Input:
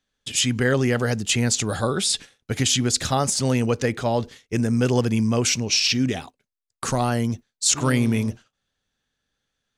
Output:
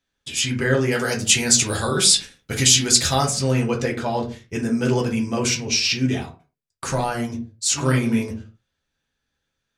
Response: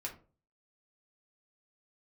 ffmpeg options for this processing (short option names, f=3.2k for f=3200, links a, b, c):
-filter_complex "[0:a]asettb=1/sr,asplit=3[a][b][c];[a]atrim=end=0.914[d];[b]atrim=start=0.91:end=3.26,asetpts=PTS-STARTPTS,afade=t=in:d=0.004:c=qsin,afade=t=out:st=2.346:d=0.004:c=qsin,highshelf=f=2.8k:g=10.5[e];[c]atrim=start=3.256[f];[d][e]acrossfade=d=0.004:c1=hsin:c2=qsin[g];[g][f]acrossfade=d=0.004:c1=qsin:c2=hsin[h];[1:a]atrim=start_sample=2205,afade=t=out:st=0.31:d=0.01,atrim=end_sample=14112[i];[h][i]afir=irnorm=-1:irlink=0,volume=1.5dB"